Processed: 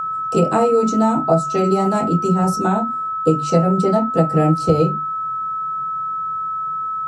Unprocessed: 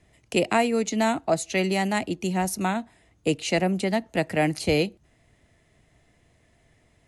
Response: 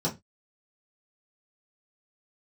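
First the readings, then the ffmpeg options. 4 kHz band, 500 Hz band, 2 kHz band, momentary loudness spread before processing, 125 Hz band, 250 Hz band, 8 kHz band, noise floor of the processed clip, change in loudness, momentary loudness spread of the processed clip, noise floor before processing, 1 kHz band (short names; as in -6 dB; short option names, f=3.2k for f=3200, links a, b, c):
-5.5 dB, +8.0 dB, -5.5 dB, 5 LU, +11.5 dB, +8.0 dB, -1.5 dB, -24 dBFS, +7.0 dB, 7 LU, -63 dBFS, +11.5 dB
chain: -filter_complex "[0:a]bandreject=f=50:t=h:w=6,bandreject=f=100:t=h:w=6,bandreject=f=150:t=h:w=6,bandreject=f=200:t=h:w=6,bandreject=f=250:t=h:w=6,bandreject=f=300:t=h:w=6[a];[1:a]atrim=start_sample=2205,atrim=end_sample=4410[b];[a][b]afir=irnorm=-1:irlink=0,acompressor=threshold=-9dB:ratio=6,aeval=exprs='val(0)+0.141*sin(2*PI*1300*n/s)':c=same,equalizer=f=125:t=o:w=1:g=8,equalizer=f=500:t=o:w=1:g=5,equalizer=f=1k:t=o:w=1:g=5,equalizer=f=4k:t=o:w=1:g=-4,equalizer=f=8k:t=o:w=1:g=8,volume=-7.5dB"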